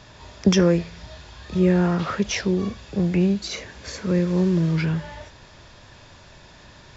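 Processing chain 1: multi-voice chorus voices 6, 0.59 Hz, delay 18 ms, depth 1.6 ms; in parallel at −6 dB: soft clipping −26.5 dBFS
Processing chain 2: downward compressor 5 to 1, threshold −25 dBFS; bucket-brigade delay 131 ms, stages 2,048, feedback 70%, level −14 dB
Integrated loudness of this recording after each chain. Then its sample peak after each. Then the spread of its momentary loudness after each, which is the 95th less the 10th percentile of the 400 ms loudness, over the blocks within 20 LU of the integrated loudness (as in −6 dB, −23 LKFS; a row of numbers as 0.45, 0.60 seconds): −23.0, −29.5 LKFS; −9.0, −12.5 dBFS; 18, 19 LU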